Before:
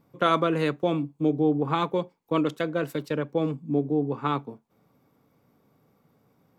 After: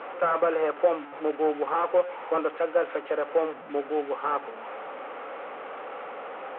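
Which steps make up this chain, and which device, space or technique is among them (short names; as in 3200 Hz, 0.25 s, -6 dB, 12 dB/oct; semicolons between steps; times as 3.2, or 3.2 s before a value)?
digital answering machine (BPF 380–3000 Hz; delta modulation 16 kbps, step -36 dBFS; speaker cabinet 380–3400 Hz, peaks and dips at 530 Hz +9 dB, 780 Hz +7 dB, 1300 Hz +8 dB)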